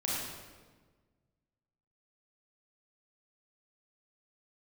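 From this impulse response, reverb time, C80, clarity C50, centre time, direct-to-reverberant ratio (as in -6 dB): 1.4 s, 0.5 dB, -2.0 dB, 99 ms, -6.0 dB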